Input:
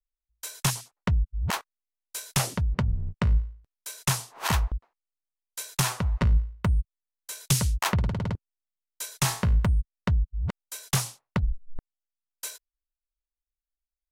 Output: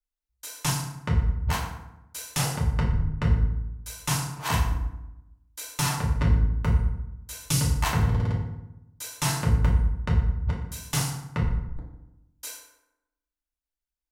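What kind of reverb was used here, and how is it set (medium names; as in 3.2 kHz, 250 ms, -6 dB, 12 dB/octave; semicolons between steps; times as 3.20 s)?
FDN reverb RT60 0.89 s, low-frequency decay 1.3×, high-frequency decay 0.6×, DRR -4 dB; trim -5 dB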